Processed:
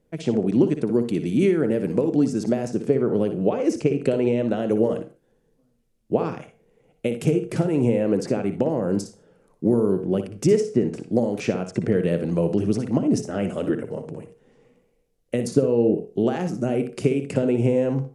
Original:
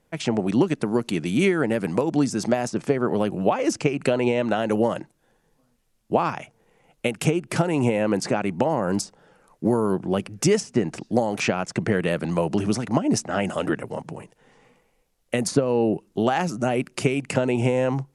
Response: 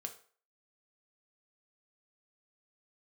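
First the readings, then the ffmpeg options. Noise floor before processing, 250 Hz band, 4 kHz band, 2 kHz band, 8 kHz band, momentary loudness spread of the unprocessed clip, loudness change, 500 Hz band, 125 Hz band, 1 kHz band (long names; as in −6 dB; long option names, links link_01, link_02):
−67 dBFS, +1.5 dB, −7.5 dB, −8.0 dB, −7.5 dB, 5 LU, +1.0 dB, +1.5 dB, +1.0 dB, −8.0 dB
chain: -filter_complex "[0:a]lowshelf=frequency=630:width_type=q:width=1.5:gain=8,asplit=2[link_01][link_02];[1:a]atrim=start_sample=2205,afade=type=out:start_time=0.21:duration=0.01,atrim=end_sample=9702,adelay=59[link_03];[link_02][link_03]afir=irnorm=-1:irlink=0,volume=-6dB[link_04];[link_01][link_04]amix=inputs=2:normalize=0,volume=-8dB"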